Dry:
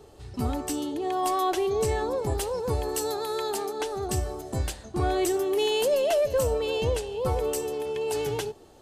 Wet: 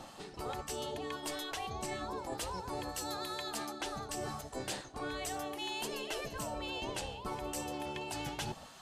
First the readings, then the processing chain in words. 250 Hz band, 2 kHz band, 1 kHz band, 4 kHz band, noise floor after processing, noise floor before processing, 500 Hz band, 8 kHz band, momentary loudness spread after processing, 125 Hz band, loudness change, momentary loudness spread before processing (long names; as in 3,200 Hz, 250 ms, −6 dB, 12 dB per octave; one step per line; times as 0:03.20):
−10.5 dB, −4.5 dB, −9.5 dB, −5.5 dB, −52 dBFS, −50 dBFS, −16.5 dB, −7.5 dB, 3 LU, −14.5 dB, −12.0 dB, 8 LU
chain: gate on every frequency bin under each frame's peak −10 dB weak
high-shelf EQ 10,000 Hz −9.5 dB
reversed playback
downward compressor 8 to 1, threshold −46 dBFS, peak gain reduction 17 dB
reversed playback
level +9 dB